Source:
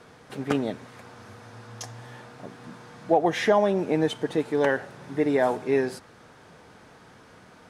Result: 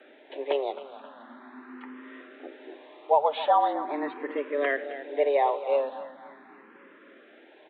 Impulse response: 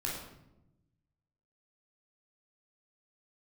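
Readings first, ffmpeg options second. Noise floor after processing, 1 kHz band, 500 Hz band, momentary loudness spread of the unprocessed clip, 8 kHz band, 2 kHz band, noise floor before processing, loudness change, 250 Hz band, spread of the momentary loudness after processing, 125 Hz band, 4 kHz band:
−54 dBFS, +3.5 dB, −2.5 dB, 22 LU, below −35 dB, −3.5 dB, −52 dBFS, −2.0 dB, −11.0 dB, 22 LU, below −30 dB, −4.0 dB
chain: -filter_complex "[0:a]asplit=2[link_01][link_02];[link_02]aecho=0:1:266|532|798|1064|1330:0.211|0.108|0.055|0.028|0.0143[link_03];[link_01][link_03]amix=inputs=2:normalize=0,aresample=8000,aresample=44100,afreqshift=140,asplit=2[link_04][link_05];[link_05]afreqshift=0.41[link_06];[link_04][link_06]amix=inputs=2:normalize=1"

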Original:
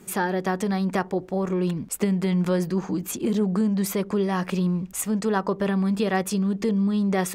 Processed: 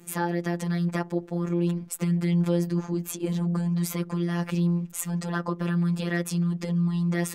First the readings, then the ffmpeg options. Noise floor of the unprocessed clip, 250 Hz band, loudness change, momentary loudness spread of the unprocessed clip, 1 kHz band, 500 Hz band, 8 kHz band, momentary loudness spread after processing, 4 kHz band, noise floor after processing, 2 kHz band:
−42 dBFS, −3.0 dB, −2.5 dB, 4 LU, −7.0 dB, −6.5 dB, −3.5 dB, 5 LU, −3.5 dB, −44 dBFS, −3.5 dB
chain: -af "afftfilt=real='hypot(re,im)*cos(PI*b)':imag='0':win_size=1024:overlap=0.75"

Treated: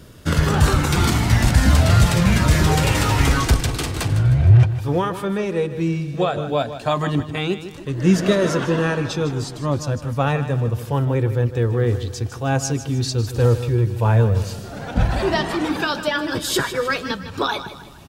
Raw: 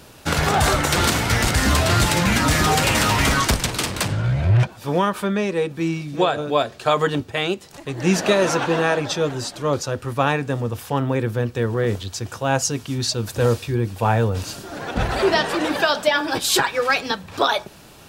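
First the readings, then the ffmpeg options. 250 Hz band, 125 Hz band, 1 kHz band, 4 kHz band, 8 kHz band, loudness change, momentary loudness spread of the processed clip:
+2.0 dB, +5.5 dB, −3.0 dB, −3.5 dB, −4.0 dB, +1.0 dB, 9 LU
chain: -af "lowshelf=frequency=300:gain=10,flanger=delay=0.6:depth=2:regen=-53:speed=0.12:shape=sinusoidal,aecho=1:1:155|310|465|620:0.251|0.103|0.0422|0.0173"

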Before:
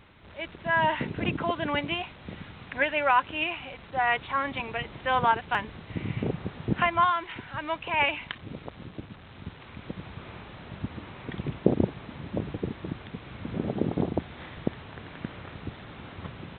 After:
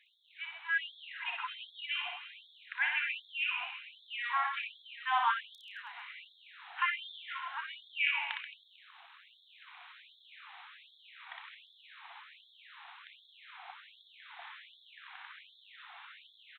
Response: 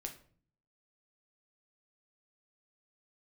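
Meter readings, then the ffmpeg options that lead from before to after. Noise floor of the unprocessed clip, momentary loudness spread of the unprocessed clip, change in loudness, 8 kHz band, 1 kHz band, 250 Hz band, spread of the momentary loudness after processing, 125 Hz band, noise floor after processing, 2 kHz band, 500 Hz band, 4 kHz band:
−49 dBFS, 19 LU, −6.5 dB, can't be measured, −10.5 dB, below −40 dB, 23 LU, below −40 dB, −64 dBFS, −4.5 dB, below −30 dB, −3.5 dB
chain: -filter_complex "[0:a]asplit=2[link_01][link_02];[link_02]adelay=32,volume=-12dB[link_03];[link_01][link_03]amix=inputs=2:normalize=0,aecho=1:1:60|132|218.4|322.1|446.5:0.631|0.398|0.251|0.158|0.1,afftfilt=real='re*gte(b*sr/1024,680*pow(3300/680,0.5+0.5*sin(2*PI*1.3*pts/sr)))':imag='im*gte(b*sr/1024,680*pow(3300/680,0.5+0.5*sin(2*PI*1.3*pts/sr)))':win_size=1024:overlap=0.75,volume=-5dB"

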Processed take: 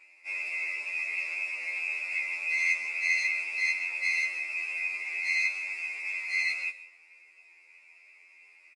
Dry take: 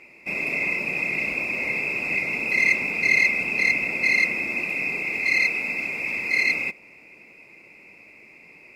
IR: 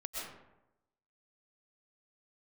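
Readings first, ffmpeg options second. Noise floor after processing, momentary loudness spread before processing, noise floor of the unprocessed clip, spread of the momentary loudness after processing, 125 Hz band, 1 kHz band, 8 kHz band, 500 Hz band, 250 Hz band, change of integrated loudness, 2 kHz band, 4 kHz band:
−58 dBFS, 7 LU, −50 dBFS, 7 LU, below −40 dB, −12.5 dB, −4.0 dB, below −20 dB, below −30 dB, −7.0 dB, −7.0 dB, −6.0 dB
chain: -filter_complex "[0:a]highpass=1100,highshelf=frequency=6900:gain=5.5,asplit=2[link_01][link_02];[1:a]atrim=start_sample=2205,highshelf=frequency=3900:gain=11.5[link_03];[link_02][link_03]afir=irnorm=-1:irlink=0,volume=-16.5dB[link_04];[link_01][link_04]amix=inputs=2:normalize=0,aresample=22050,aresample=44100,afftfilt=real='re*2*eq(mod(b,4),0)':imag='im*2*eq(mod(b,4),0)':win_size=2048:overlap=0.75,volume=-6dB"

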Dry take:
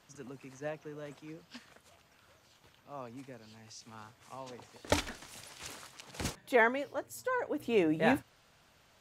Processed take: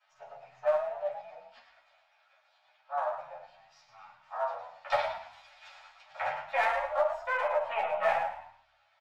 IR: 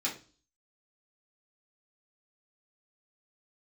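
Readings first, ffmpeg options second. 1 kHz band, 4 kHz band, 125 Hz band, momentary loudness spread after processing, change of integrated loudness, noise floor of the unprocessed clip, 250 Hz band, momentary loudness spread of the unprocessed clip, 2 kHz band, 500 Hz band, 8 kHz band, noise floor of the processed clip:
+7.5 dB, −3.5 dB, below −15 dB, 21 LU, +1.5 dB, −66 dBFS, below −30 dB, 22 LU, +1.0 dB, +3.0 dB, below −15 dB, −69 dBFS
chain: -filter_complex "[0:a]aeval=exprs='if(lt(val(0),0),0.251*val(0),val(0))':channel_layout=same,acrossover=split=170|3000[link_01][link_02][link_03];[link_02]acompressor=threshold=-36dB:ratio=5[link_04];[link_01][link_04][link_03]amix=inputs=3:normalize=0,afwtdn=0.00562,firequalizer=gain_entry='entry(160,0);entry(280,-23);entry(590,12);entry(1100,14);entry(2400,14);entry(5200,7);entry(8400,-10)':delay=0.05:min_phase=1[link_05];[1:a]atrim=start_sample=2205[link_06];[link_05][link_06]afir=irnorm=-1:irlink=0,acrossover=split=1600[link_07][link_08];[link_07]aeval=exprs='clip(val(0),-1,0.0376)':channel_layout=same[link_09];[link_08]acompressor=threshold=-40dB:ratio=6[link_10];[link_09][link_10]amix=inputs=2:normalize=0,lowshelf=frequency=450:width_type=q:width=3:gain=-11.5,asplit=2[link_11][link_12];[link_12]asplit=4[link_13][link_14][link_15][link_16];[link_13]adelay=109,afreqshift=36,volume=-8dB[link_17];[link_14]adelay=218,afreqshift=72,volume=-17.9dB[link_18];[link_15]adelay=327,afreqshift=108,volume=-27.8dB[link_19];[link_16]adelay=436,afreqshift=144,volume=-37.7dB[link_20];[link_17][link_18][link_19][link_20]amix=inputs=4:normalize=0[link_21];[link_11][link_21]amix=inputs=2:normalize=0,asplit=2[link_22][link_23];[link_23]adelay=11.2,afreqshift=-0.28[link_24];[link_22][link_24]amix=inputs=2:normalize=1"

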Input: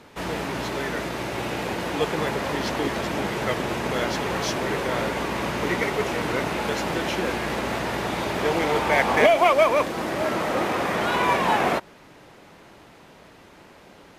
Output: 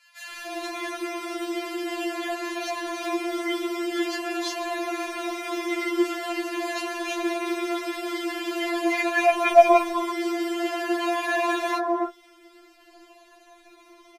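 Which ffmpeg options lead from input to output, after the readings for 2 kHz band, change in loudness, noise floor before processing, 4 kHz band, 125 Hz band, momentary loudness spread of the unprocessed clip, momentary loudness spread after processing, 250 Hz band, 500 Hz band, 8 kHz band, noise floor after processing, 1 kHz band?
−3.0 dB, −2.0 dB, −50 dBFS, −3.0 dB, below −35 dB, 9 LU, 10 LU, +1.0 dB, −1.5 dB, −2.0 dB, −55 dBFS, −2.0 dB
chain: -filter_complex "[0:a]afftfilt=real='re*pow(10,6/40*sin(2*PI*(1.5*log(max(b,1)*sr/1024/100)/log(2)-(-0.46)*(pts-256)/sr)))':imag='im*pow(10,6/40*sin(2*PI*(1.5*log(max(b,1)*sr/1024/100)/log(2)-(-0.46)*(pts-256)/sr)))':win_size=1024:overlap=0.75,acrossover=split=1300[link_01][link_02];[link_01]adelay=290[link_03];[link_03][link_02]amix=inputs=2:normalize=0,afftfilt=real='re*4*eq(mod(b,16),0)':imag='im*4*eq(mod(b,16),0)':win_size=2048:overlap=0.75"

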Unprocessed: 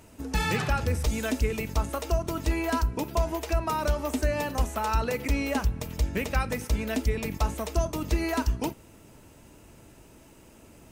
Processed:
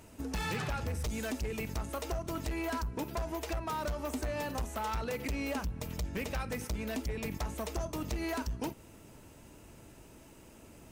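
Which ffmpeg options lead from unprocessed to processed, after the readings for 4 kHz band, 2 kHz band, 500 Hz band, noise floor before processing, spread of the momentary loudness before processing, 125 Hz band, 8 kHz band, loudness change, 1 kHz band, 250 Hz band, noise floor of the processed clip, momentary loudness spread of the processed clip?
−6.5 dB, −7.5 dB, −7.5 dB, −53 dBFS, 3 LU, −9.0 dB, −6.5 dB, −8.0 dB, −8.0 dB, −7.0 dB, −55 dBFS, 19 LU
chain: -af "acompressor=threshold=-31dB:ratio=2,asoftclip=type=hard:threshold=-28.5dB,volume=-2dB"

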